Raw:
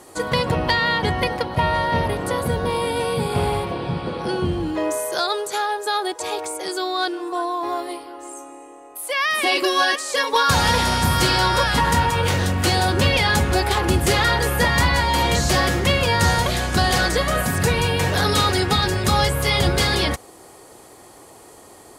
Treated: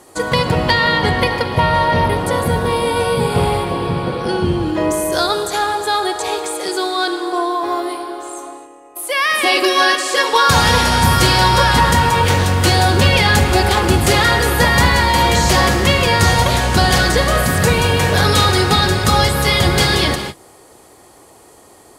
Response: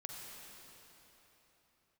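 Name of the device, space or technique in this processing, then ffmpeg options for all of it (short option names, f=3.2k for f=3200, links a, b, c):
keyed gated reverb: -filter_complex "[0:a]asplit=3[a][b][c];[1:a]atrim=start_sample=2205[d];[b][d]afir=irnorm=-1:irlink=0[e];[c]apad=whole_len=969327[f];[e][f]sidechaingate=range=-33dB:threshold=-39dB:ratio=16:detection=peak,volume=2.5dB[g];[a][g]amix=inputs=2:normalize=0"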